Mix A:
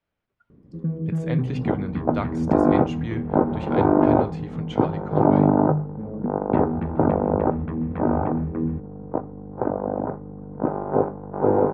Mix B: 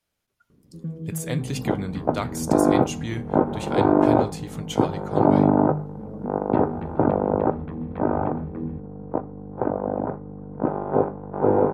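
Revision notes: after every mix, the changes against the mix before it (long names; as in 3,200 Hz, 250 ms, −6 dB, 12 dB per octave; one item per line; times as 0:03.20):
first sound −6.0 dB
master: remove low-pass filter 2,300 Hz 12 dB per octave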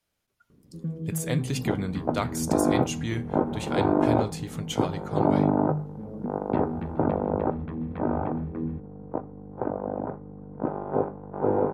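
second sound −5.0 dB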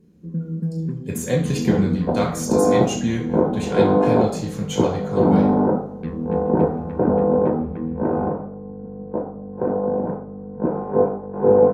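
first sound: entry −0.50 s
reverb: on, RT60 0.55 s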